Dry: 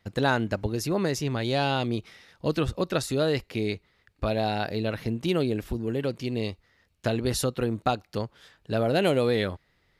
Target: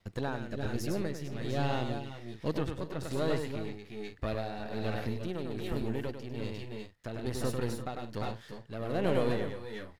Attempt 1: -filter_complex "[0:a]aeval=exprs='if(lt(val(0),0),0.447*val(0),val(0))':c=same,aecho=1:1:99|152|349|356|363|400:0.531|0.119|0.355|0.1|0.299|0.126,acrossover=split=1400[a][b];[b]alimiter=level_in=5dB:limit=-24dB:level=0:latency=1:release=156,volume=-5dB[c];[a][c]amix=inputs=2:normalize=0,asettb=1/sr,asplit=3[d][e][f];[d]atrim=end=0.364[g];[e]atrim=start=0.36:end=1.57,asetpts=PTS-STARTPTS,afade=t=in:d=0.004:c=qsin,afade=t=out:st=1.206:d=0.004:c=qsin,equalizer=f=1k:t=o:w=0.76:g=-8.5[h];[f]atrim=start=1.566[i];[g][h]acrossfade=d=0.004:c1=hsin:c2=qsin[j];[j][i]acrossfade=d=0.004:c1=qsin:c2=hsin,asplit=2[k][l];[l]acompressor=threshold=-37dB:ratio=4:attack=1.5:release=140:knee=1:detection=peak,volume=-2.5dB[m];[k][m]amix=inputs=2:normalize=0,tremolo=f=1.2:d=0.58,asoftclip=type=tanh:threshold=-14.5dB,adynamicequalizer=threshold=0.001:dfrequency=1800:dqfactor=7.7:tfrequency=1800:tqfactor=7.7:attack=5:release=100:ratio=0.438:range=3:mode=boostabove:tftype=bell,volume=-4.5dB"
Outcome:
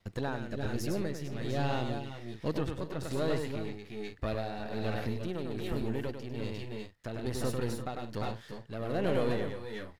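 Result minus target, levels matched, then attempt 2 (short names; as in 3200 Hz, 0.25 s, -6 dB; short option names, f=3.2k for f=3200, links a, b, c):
soft clip: distortion +11 dB; compressor: peak gain reduction -5.5 dB
-filter_complex "[0:a]aeval=exprs='if(lt(val(0),0),0.447*val(0),val(0))':c=same,aecho=1:1:99|152|349|356|363|400:0.531|0.119|0.355|0.1|0.299|0.126,acrossover=split=1400[a][b];[b]alimiter=level_in=5dB:limit=-24dB:level=0:latency=1:release=156,volume=-5dB[c];[a][c]amix=inputs=2:normalize=0,asettb=1/sr,asplit=3[d][e][f];[d]atrim=end=0.364[g];[e]atrim=start=0.36:end=1.57,asetpts=PTS-STARTPTS,afade=t=in:d=0.004:c=qsin,afade=t=out:st=1.206:d=0.004:c=qsin,equalizer=f=1k:t=o:w=0.76:g=-8.5[h];[f]atrim=start=1.566[i];[g][h]acrossfade=d=0.004:c1=hsin:c2=qsin[j];[j][i]acrossfade=d=0.004:c1=qsin:c2=hsin,asplit=2[k][l];[l]acompressor=threshold=-44.5dB:ratio=4:attack=1.5:release=140:knee=1:detection=peak,volume=-2.5dB[m];[k][m]amix=inputs=2:normalize=0,tremolo=f=1.2:d=0.58,asoftclip=type=tanh:threshold=-8dB,adynamicequalizer=threshold=0.001:dfrequency=1800:dqfactor=7.7:tfrequency=1800:tqfactor=7.7:attack=5:release=100:ratio=0.438:range=3:mode=boostabove:tftype=bell,volume=-4.5dB"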